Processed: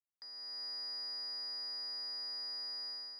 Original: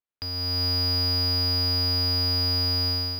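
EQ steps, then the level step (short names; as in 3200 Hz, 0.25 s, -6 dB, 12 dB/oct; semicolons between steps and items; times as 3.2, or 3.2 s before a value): ladder band-pass 2000 Hz, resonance 85%; Butterworth band-stop 2700 Hz, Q 0.57; bell 1700 Hz -14 dB 1.7 oct; +12.5 dB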